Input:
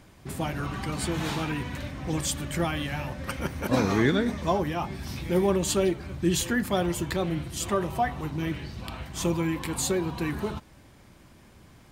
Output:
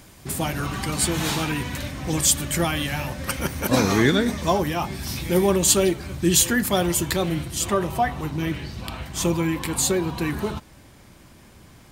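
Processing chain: treble shelf 4.6 kHz +11.5 dB, from 7.45 s +4.5 dB; trim +4 dB

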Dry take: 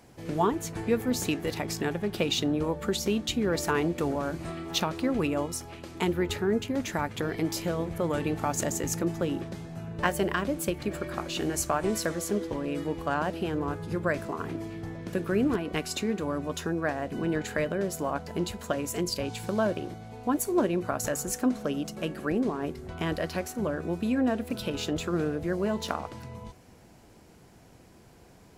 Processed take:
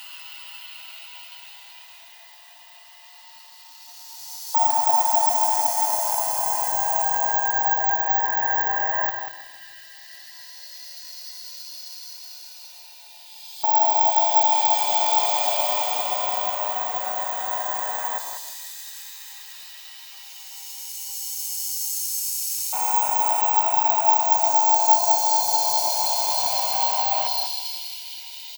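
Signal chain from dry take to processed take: split-band scrambler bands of 500 Hz; steep high-pass 290 Hz 48 dB/octave; transient shaper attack -6 dB, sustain +7 dB; in parallel at 0 dB: compression 6:1, threshold -40 dBFS, peak gain reduction 16.5 dB; on the sum: Paulstretch 17×, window 0.25 s, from 17.59 s; LFO high-pass square 0.11 Hz 860–4300 Hz; on a send: multi-tap echo 102/192 ms -12.5/-8 dB; on the sum: careless resampling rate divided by 2×, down none, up zero stuff; bit-crushed delay 159 ms, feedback 55%, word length 7-bit, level -14 dB

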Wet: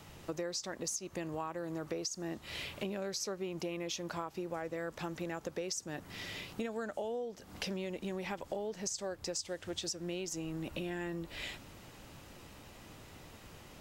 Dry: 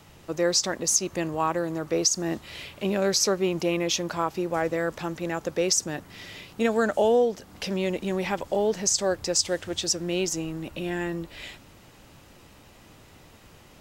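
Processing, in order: compression 10:1, threshold -34 dBFS, peak gain reduction 17 dB; trim -1.5 dB

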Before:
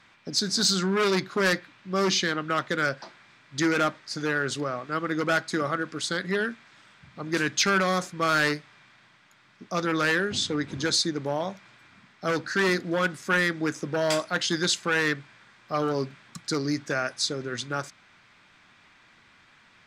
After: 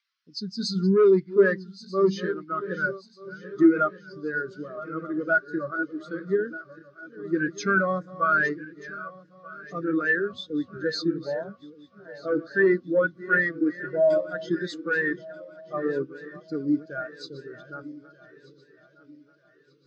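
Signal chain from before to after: backward echo that repeats 618 ms, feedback 80%, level -7 dB; band noise 970–5900 Hz -41 dBFS; spectral contrast expander 2.5:1; trim +3 dB

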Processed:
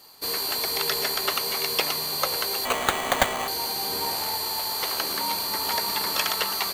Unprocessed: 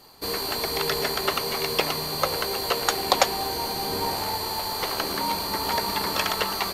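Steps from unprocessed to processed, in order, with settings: tilt EQ +2 dB/octave; 2.65–3.48 s: sample-rate reducer 5.3 kHz, jitter 0%; trim -2.5 dB

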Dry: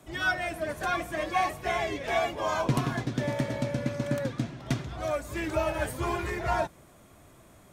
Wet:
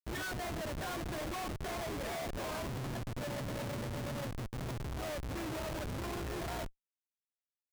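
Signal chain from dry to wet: 3.13–4.10 s: high-pass 110 Hz 6 dB/octave; compression 20:1, threshold -38 dBFS, peak gain reduction 18 dB; Schmitt trigger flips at -43.5 dBFS; trim +4.5 dB

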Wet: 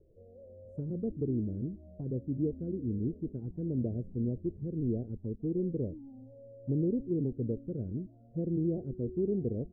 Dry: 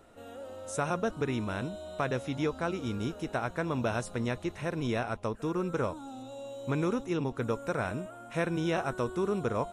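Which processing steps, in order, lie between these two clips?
inverse Chebyshev low-pass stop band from 1.1 kHz, stop band 50 dB; touch-sensitive flanger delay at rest 2.1 ms, full sweep at -28 dBFS; trim +1.5 dB

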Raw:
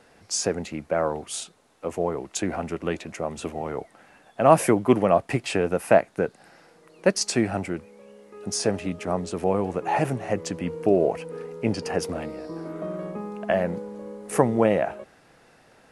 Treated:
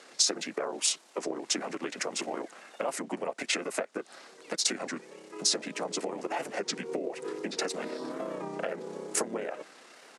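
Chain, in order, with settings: harmony voices -4 st 0 dB; compression 10:1, threshold -27 dBFS, peak gain reduction 20 dB; low-pass 7.6 kHz 12 dB/octave; tilt EQ +3.5 dB/octave; granular stretch 0.64×, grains 61 ms; high-pass 210 Hz 24 dB/octave; bass shelf 490 Hz +5 dB; warped record 33 1/3 rpm, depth 100 cents

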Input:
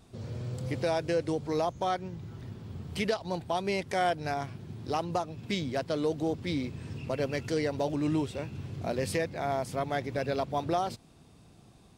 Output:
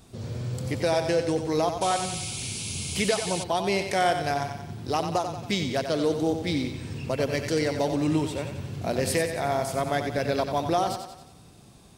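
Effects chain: treble shelf 5.5 kHz +7 dB; thinning echo 91 ms, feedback 52%, high-pass 220 Hz, level -7.5 dB; painted sound noise, 1.81–3.44 s, 2.1–11 kHz -39 dBFS; trim +4 dB

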